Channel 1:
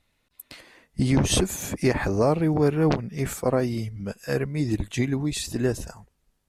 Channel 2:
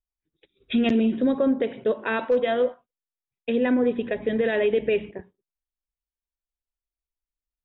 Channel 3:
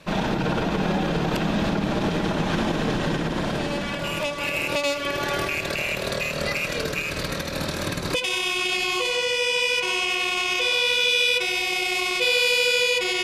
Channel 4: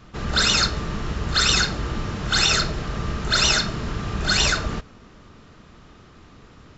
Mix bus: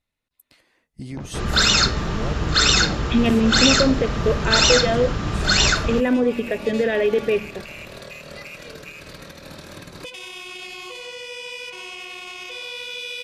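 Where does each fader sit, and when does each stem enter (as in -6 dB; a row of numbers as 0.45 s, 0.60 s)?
-12.0 dB, +2.5 dB, -11.5 dB, +2.5 dB; 0.00 s, 2.40 s, 1.90 s, 1.20 s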